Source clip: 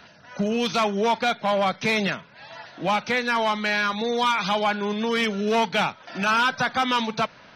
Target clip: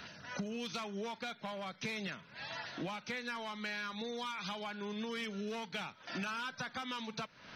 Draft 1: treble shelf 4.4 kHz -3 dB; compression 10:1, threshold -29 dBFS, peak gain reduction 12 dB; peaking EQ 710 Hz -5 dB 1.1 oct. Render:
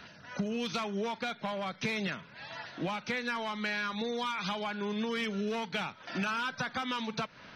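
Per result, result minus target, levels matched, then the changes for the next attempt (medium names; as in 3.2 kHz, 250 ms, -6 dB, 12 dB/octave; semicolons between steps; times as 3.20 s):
compression: peak gain reduction -7 dB; 8 kHz band -3.5 dB
change: compression 10:1, threshold -36.5 dBFS, peak gain reduction 19 dB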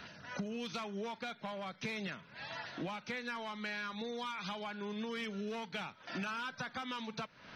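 8 kHz band -3.0 dB
change: treble shelf 4.4 kHz +3 dB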